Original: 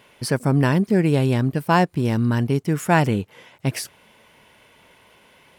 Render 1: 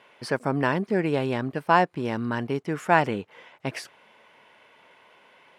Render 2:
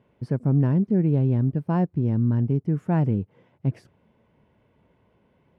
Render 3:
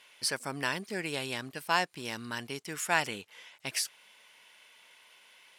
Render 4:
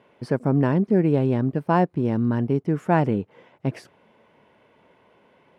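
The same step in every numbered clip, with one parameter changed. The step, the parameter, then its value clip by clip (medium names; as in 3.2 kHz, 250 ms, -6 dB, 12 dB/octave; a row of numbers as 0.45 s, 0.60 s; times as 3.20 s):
band-pass filter, frequency: 1.1 kHz, 100 Hz, 5.4 kHz, 360 Hz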